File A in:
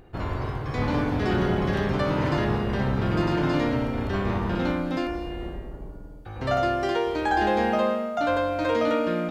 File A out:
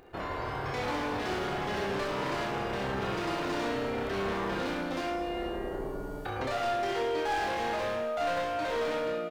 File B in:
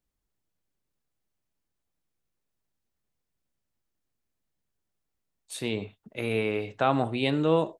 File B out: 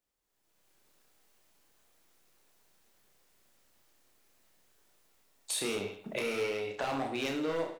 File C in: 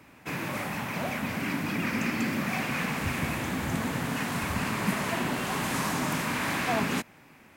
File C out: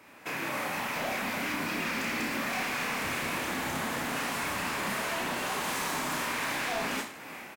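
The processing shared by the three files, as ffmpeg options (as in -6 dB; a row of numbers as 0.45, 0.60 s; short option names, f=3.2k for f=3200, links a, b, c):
-filter_complex "[0:a]bass=f=250:g=-13,treble=f=4k:g=0,dynaudnorm=f=210:g=5:m=16.5dB,asoftclip=type=hard:threshold=-16dB,acompressor=threshold=-35dB:ratio=6,asplit=2[a][b];[b]aecho=0:1:30|66|109.2|161|223.2:0.631|0.398|0.251|0.158|0.1[c];[a][c]amix=inputs=2:normalize=0"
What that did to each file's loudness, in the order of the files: -7.0, -6.0, -1.5 LU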